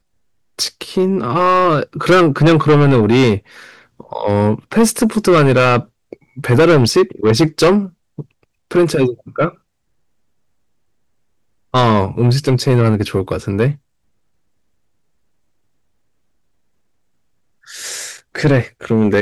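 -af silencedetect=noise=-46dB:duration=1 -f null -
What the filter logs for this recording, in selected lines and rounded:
silence_start: 9.57
silence_end: 11.73 | silence_duration: 2.16
silence_start: 13.78
silence_end: 17.64 | silence_duration: 3.85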